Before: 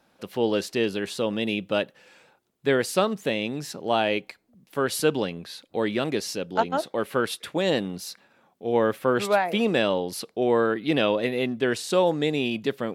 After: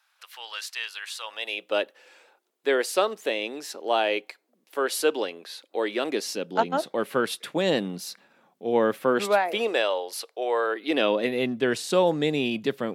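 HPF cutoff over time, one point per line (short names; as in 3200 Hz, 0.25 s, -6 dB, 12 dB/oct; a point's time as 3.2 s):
HPF 24 dB/oct
1.16 s 1100 Hz
1.76 s 330 Hz
5.89 s 330 Hz
6.82 s 140 Hz
9.01 s 140 Hz
9.91 s 490 Hz
10.64 s 490 Hz
11.42 s 120 Hz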